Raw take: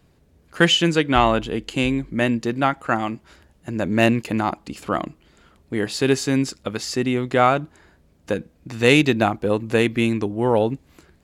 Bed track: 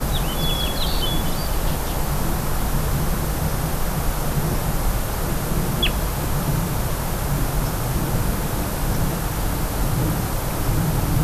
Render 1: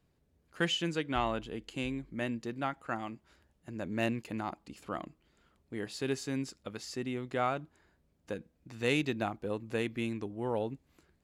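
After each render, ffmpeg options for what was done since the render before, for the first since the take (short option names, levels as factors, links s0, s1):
-af "volume=0.178"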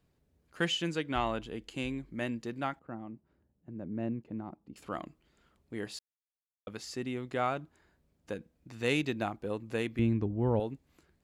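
-filter_complex "[0:a]asettb=1/sr,asplit=3[s0][s1][s2];[s0]atrim=end=2.794[s3];[s1]atrim=start=2.79:end=4.76,asetpts=PTS-STARTPTS,afade=t=in:d=0.004:c=qsin,afade=t=out:st=1.966:d=0.004:c=qsin,bandpass=f=180:t=q:w=0.66[s4];[s2]atrim=start=4.756[s5];[s3][s4]acrossfade=d=0.004:c1=hsin:c2=qsin[s6];[s6][s5]acrossfade=d=0.004:c1=qsin:c2=hsin,asettb=1/sr,asplit=3[s7][s8][s9];[s7]atrim=end=9.994[s10];[s8]atrim=start=9.99:end=10.6,asetpts=PTS-STARTPTS,afade=t=in:d=0.004:c=qsin,afade=t=out:st=0.606:d=0.004:c=qsin,aemphasis=mode=reproduction:type=riaa[s11];[s9]atrim=start=10.596[s12];[s10][s11]acrossfade=d=0.004:c1=hsin:c2=qsin[s13];[s13][s12]acrossfade=d=0.004:c1=qsin:c2=hsin,asplit=3[s14][s15][s16];[s14]atrim=end=5.99,asetpts=PTS-STARTPTS,afade=t=out:st=5.986:d=0.004:c=hsin[s17];[s15]atrim=start=5.99:end=6.67,asetpts=PTS-STARTPTS,volume=0[s18];[s16]atrim=start=6.67,asetpts=PTS-STARTPTS,afade=t=in:d=0.004:c=hsin[s19];[s17][s18][s19]concat=n=3:v=0:a=1"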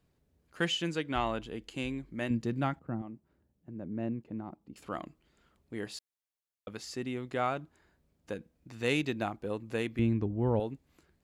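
-filter_complex "[0:a]asettb=1/sr,asplit=3[s0][s1][s2];[s0]atrim=end=2.304[s3];[s1]atrim=start=2.3:end=3.02,asetpts=PTS-STARTPTS,afade=t=in:d=0.004:c=qsin,afade=t=out:st=0.716:d=0.004:c=qsin,equalizer=f=110:t=o:w=2.7:g=11[s4];[s2]atrim=start=3.016[s5];[s3][s4]acrossfade=d=0.004:c1=hsin:c2=qsin[s6];[s6][s5]acrossfade=d=0.004:c1=qsin:c2=hsin"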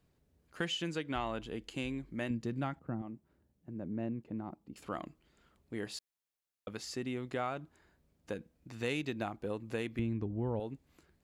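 -af "acompressor=threshold=0.02:ratio=2.5"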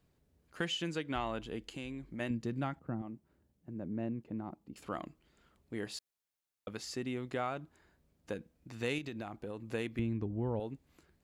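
-filter_complex "[0:a]asettb=1/sr,asplit=3[s0][s1][s2];[s0]atrim=end=1.744[s3];[s1]atrim=start=1.74:end=2.2,asetpts=PTS-STARTPTS,afade=t=in:d=0.004:c=qsin,afade=t=out:st=0.456:d=0.004:c=qsin,acompressor=threshold=0.01:ratio=2.5:attack=3.2:release=140:knee=1:detection=peak[s4];[s2]atrim=start=2.196[s5];[s3][s4]acrossfade=d=0.004:c1=hsin:c2=qsin[s6];[s6][s5]acrossfade=d=0.004:c1=qsin:c2=hsin,asettb=1/sr,asplit=3[s7][s8][s9];[s7]atrim=end=8.984[s10];[s8]atrim=start=8.98:end=9.62,asetpts=PTS-STARTPTS,afade=t=in:d=0.004:c=qsin,afade=t=out:st=0.636:d=0.004:c=qsin,acompressor=threshold=0.0141:ratio=6:attack=3.2:release=140:knee=1:detection=peak[s11];[s9]atrim=start=9.616[s12];[s10][s11]acrossfade=d=0.004:c1=hsin:c2=qsin[s13];[s13][s12]acrossfade=d=0.004:c1=qsin:c2=hsin"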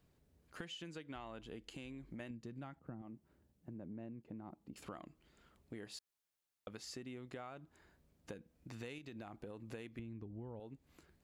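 -af "acompressor=threshold=0.00501:ratio=6"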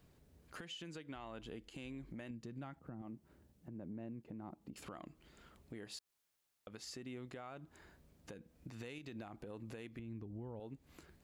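-filter_complex "[0:a]asplit=2[s0][s1];[s1]acompressor=threshold=0.00158:ratio=6,volume=1[s2];[s0][s2]amix=inputs=2:normalize=0,alimiter=level_in=5.31:limit=0.0631:level=0:latency=1:release=125,volume=0.188"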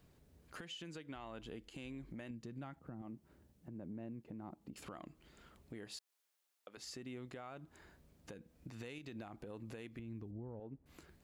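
-filter_complex "[0:a]asettb=1/sr,asplit=3[s0][s1][s2];[s0]atrim=end=5.984[s3];[s1]atrim=start=5.98:end=6.77,asetpts=PTS-STARTPTS,afade=t=in:d=0.004:c=qsin,afade=t=out:st=0.786:d=0.004:c=qsin,highpass=380[s4];[s2]atrim=start=6.766[s5];[s3][s4]acrossfade=d=0.004:c1=hsin:c2=qsin[s6];[s6][s5]acrossfade=d=0.004:c1=qsin:c2=hsin,asettb=1/sr,asplit=3[s7][s8][s9];[s7]atrim=end=10.314[s10];[s8]atrim=start=10.31:end=10.86,asetpts=PTS-STARTPTS,afade=t=in:d=0.004:c=qsin,afade=t=out:st=0.546:d=0.004:c=qsin,adynamicsmooth=sensitivity=1.5:basefreq=1200[s11];[s9]atrim=start=10.856[s12];[s10][s11]acrossfade=d=0.004:c1=hsin:c2=qsin[s13];[s13][s12]acrossfade=d=0.004:c1=qsin:c2=hsin"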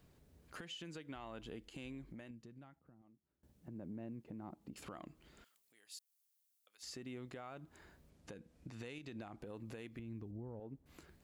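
-filter_complex "[0:a]asettb=1/sr,asplit=3[s0][s1][s2];[s0]atrim=end=5.444[s3];[s1]atrim=start=5.44:end=6.83,asetpts=PTS-STARTPTS,afade=t=in:d=0.004:c=qsin,afade=t=out:st=1.386:d=0.004:c=qsin,aderivative[s4];[s2]atrim=start=6.826[s5];[s3][s4]acrossfade=d=0.004:c1=hsin:c2=qsin[s6];[s6][s5]acrossfade=d=0.004:c1=qsin:c2=hsin,asettb=1/sr,asplit=3[s7][s8][s9];[s7]atrim=end=8.104[s10];[s8]atrim=start=8.1:end=9.42,asetpts=PTS-STARTPTS,afade=t=in:d=0.004:c=qsin,afade=t=out:st=1.316:d=0.004:c=qsin,lowpass=11000[s11];[s9]atrim=start=9.416[s12];[s10][s11]acrossfade=d=0.004:c1=hsin:c2=qsin[s13];[s13][s12]acrossfade=d=0.004:c1=qsin:c2=hsin,asplit=2[s14][s15];[s14]atrim=end=3.43,asetpts=PTS-STARTPTS,afade=t=out:st=1.87:d=1.56:c=qua:silence=0.0749894[s16];[s15]atrim=start=3.43,asetpts=PTS-STARTPTS,afade=t=in:d=0.004:c=hsin:silence=0.0749894[s17];[s16][s17]concat=n=2:v=0:a=1"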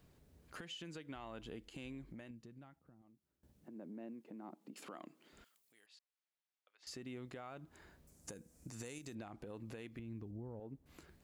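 -filter_complex "[0:a]asettb=1/sr,asplit=3[s0][s1][s2];[s0]atrim=end=3.644[s3];[s1]atrim=start=3.64:end=5.33,asetpts=PTS-STARTPTS,afade=t=in:d=0.004:c=qsin,afade=t=out:st=1.686:d=0.004:c=qsin,highpass=f=210:w=0.5412,highpass=f=210:w=1.3066[s4];[s2]atrim=start=5.326[s5];[s3][s4]acrossfade=d=0.004:c1=hsin:c2=qsin[s6];[s6][s5]acrossfade=d=0.004:c1=qsin:c2=hsin,asettb=1/sr,asplit=3[s7][s8][s9];[s7]atrim=end=5.864[s10];[s8]atrim=start=5.86:end=6.87,asetpts=PTS-STARTPTS,afade=t=in:d=0.004:c=qsin,afade=t=out:st=1.006:d=0.004:c=qsin,highpass=410,lowpass=2600[s11];[s9]atrim=start=6.866[s12];[s10][s11]acrossfade=d=0.004:c1=hsin:c2=qsin[s13];[s13][s12]acrossfade=d=0.004:c1=qsin:c2=hsin,asettb=1/sr,asplit=3[s14][s15][s16];[s14]atrim=end=8.074[s17];[s15]atrim=start=8.07:end=9.15,asetpts=PTS-STARTPTS,afade=t=in:d=0.004:c=qsin,afade=t=out:st=1.076:d=0.004:c=qsin,highshelf=f=5000:t=q:w=1.5:g=13[s18];[s16]atrim=start=9.146[s19];[s17][s18]acrossfade=d=0.004:c1=hsin:c2=qsin[s20];[s20][s19]acrossfade=d=0.004:c1=qsin:c2=hsin"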